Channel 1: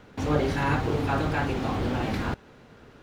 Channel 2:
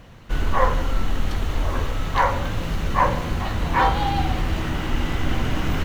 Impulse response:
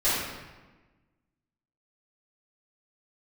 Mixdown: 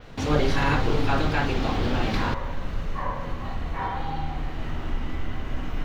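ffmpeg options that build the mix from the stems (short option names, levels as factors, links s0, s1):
-filter_complex "[0:a]equalizer=f=4200:t=o:w=1.8:g=6.5,volume=1.12[s0];[1:a]acompressor=threshold=0.02:ratio=2,highshelf=f=5500:g=-7,volume=0.398,asplit=2[s1][s2];[s2]volume=0.398[s3];[2:a]atrim=start_sample=2205[s4];[s3][s4]afir=irnorm=-1:irlink=0[s5];[s0][s1][s5]amix=inputs=3:normalize=0,adynamicequalizer=threshold=0.00158:dfrequency=9700:dqfactor=0.93:tfrequency=9700:tqfactor=0.93:attack=5:release=100:ratio=0.375:range=3:mode=cutabove:tftype=bell"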